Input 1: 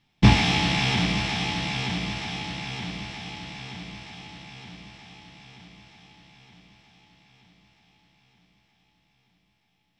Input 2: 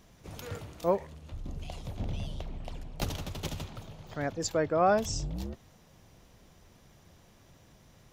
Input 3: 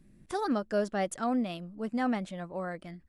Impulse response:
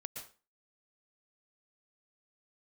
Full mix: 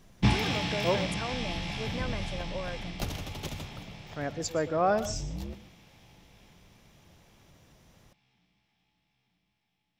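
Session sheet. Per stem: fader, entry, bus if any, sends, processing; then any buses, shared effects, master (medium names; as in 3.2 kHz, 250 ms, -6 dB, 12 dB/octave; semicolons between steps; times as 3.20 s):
-8.5 dB, 0.00 s, no send, none
-3.5 dB, 0.00 s, send -5.5 dB, none
-1.5 dB, 0.00 s, no send, comb 1.9 ms; compression, threshold -32 dBFS, peak gain reduction 10.5 dB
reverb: on, RT60 0.35 s, pre-delay 108 ms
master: none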